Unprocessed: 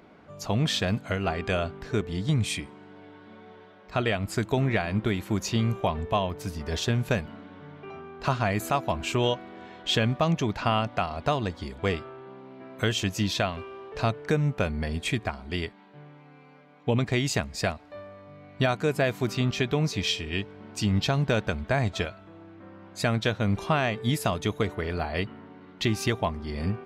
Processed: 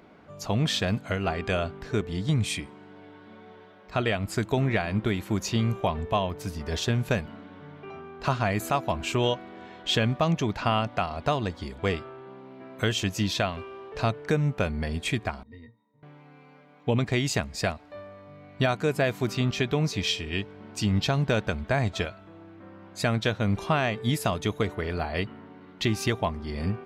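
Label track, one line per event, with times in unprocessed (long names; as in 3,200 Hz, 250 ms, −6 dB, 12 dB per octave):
15.430000	16.030000	resonances in every octave A#, decay 0.19 s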